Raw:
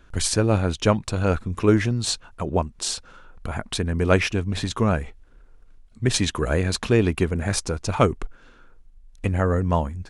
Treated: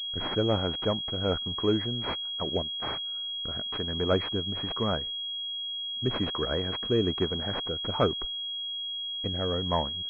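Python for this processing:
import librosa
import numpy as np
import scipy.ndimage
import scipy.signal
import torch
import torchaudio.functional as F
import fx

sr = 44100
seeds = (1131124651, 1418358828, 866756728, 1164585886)

y = fx.low_shelf(x, sr, hz=260.0, db=-10.0)
y = fx.leveller(y, sr, passes=2)
y = fx.rotary(y, sr, hz=1.2)
y = fx.pwm(y, sr, carrier_hz=3300.0)
y = F.gain(torch.from_numpy(y), -8.5).numpy()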